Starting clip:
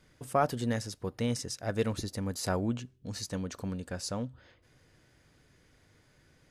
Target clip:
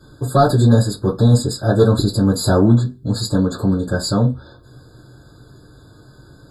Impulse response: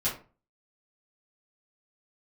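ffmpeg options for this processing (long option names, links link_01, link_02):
-filter_complex "[0:a]aeval=exprs='0.2*(cos(1*acos(clip(val(0)/0.2,-1,1)))-cos(1*PI/2))+0.0708*(cos(5*acos(clip(val(0)/0.2,-1,1)))-cos(5*PI/2))':channel_layout=same[link_01];[1:a]atrim=start_sample=2205,afade=type=out:start_time=0.34:duration=0.01,atrim=end_sample=15435,asetrate=83790,aresample=44100[link_02];[link_01][link_02]afir=irnorm=-1:irlink=0,afftfilt=real='re*eq(mod(floor(b*sr/1024/1700),2),0)':imag='im*eq(mod(floor(b*sr/1024/1700),2),0)':win_size=1024:overlap=0.75,volume=6.5dB"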